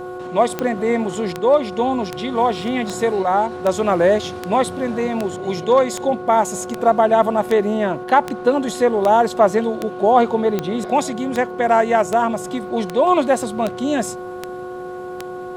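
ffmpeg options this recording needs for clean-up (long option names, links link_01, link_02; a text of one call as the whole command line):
ffmpeg -i in.wav -af "adeclick=threshold=4,bandreject=frequency=364.4:width_type=h:width=4,bandreject=frequency=728.8:width_type=h:width=4,bandreject=frequency=1093.2:width_type=h:width=4,bandreject=frequency=1457.6:width_type=h:width=4,bandreject=frequency=510:width=30" out.wav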